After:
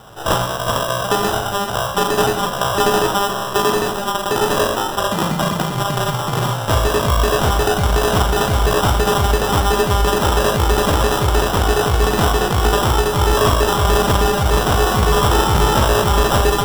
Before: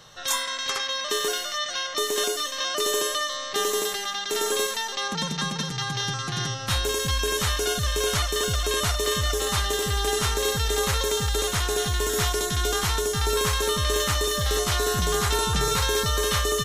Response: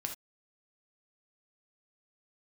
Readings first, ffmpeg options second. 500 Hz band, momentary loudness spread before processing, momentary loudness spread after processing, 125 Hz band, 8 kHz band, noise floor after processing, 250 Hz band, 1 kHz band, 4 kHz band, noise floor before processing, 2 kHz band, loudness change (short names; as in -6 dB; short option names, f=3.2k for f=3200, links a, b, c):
+9.5 dB, 4 LU, 5 LU, +10.5 dB, +1.0 dB, -23 dBFS, +13.5 dB, +12.5 dB, +2.5 dB, -33 dBFS, +6.5 dB, +8.0 dB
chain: -filter_complex "[0:a]acrusher=samples=20:mix=1:aa=0.000001,asplit=2[a][b];[1:a]atrim=start_sample=2205,adelay=39[c];[b][c]afir=irnorm=-1:irlink=0,volume=-7.5dB[d];[a][d]amix=inputs=2:normalize=0,volume=8.5dB"